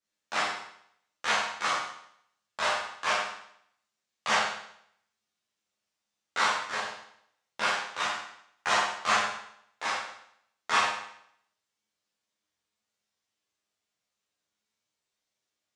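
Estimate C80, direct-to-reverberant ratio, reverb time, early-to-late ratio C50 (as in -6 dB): 5.0 dB, -8.0 dB, 0.70 s, 2.0 dB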